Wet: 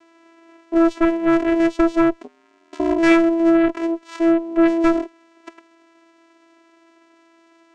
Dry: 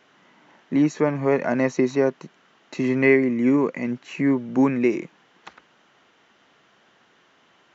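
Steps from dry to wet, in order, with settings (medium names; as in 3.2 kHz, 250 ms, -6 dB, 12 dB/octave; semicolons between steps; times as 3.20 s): vocoder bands 4, saw 332 Hz; 2.22–2.98 s: ring modulator 84 Hz -> 26 Hz; Chebyshev shaper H 4 -12 dB, 5 -13 dB, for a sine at -5.5 dBFS; trim +1 dB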